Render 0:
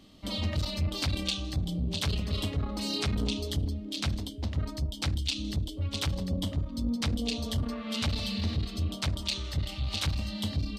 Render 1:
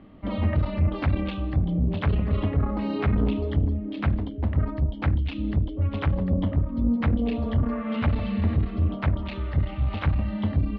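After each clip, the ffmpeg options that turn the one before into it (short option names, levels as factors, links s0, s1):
-af "lowpass=f=2000:w=0.5412,lowpass=f=2000:w=1.3066,volume=2.37"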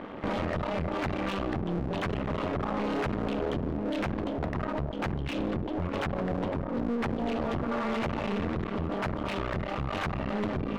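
-filter_complex "[0:a]acompressor=threshold=0.0355:ratio=3,aeval=exprs='max(val(0),0)':c=same,asplit=2[s0][s1];[s1]highpass=f=720:p=1,volume=25.1,asoftclip=type=tanh:threshold=0.1[s2];[s0][s2]amix=inputs=2:normalize=0,lowpass=f=1600:p=1,volume=0.501"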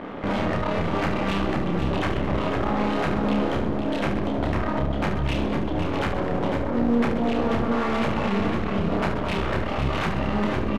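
-filter_complex "[0:a]asplit=2[s0][s1];[s1]aecho=0:1:504:0.422[s2];[s0][s2]amix=inputs=2:normalize=0,aresample=32000,aresample=44100,asplit=2[s3][s4];[s4]aecho=0:1:30|72|130.8|213.1|328.4:0.631|0.398|0.251|0.158|0.1[s5];[s3][s5]amix=inputs=2:normalize=0,volume=1.58"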